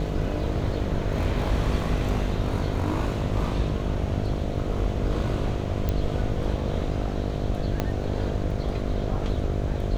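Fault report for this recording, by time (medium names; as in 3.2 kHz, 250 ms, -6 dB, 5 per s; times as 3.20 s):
buzz 50 Hz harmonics 14 -30 dBFS
5.89 s: pop -13 dBFS
7.80 s: pop -11 dBFS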